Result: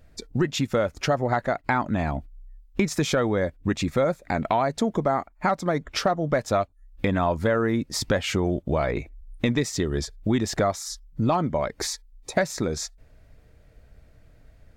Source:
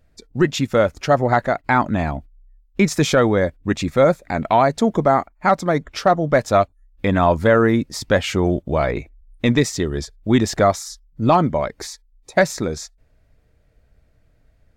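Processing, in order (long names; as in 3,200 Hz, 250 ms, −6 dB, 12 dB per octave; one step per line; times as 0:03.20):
downward compressor 3 to 1, threshold −29 dBFS, peak gain reduction 14.5 dB
level +5 dB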